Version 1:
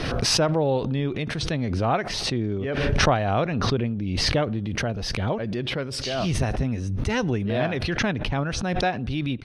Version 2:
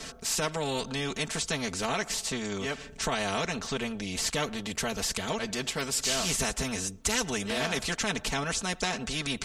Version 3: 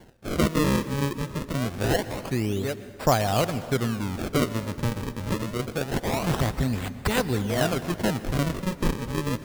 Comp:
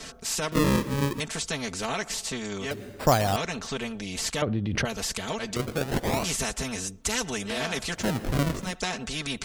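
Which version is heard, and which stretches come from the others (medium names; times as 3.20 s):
2
0.52–1.20 s: from 3
2.71–3.36 s: from 3
4.42–4.85 s: from 1
5.56–6.24 s: from 3
8.02–8.65 s: from 3, crossfade 0.24 s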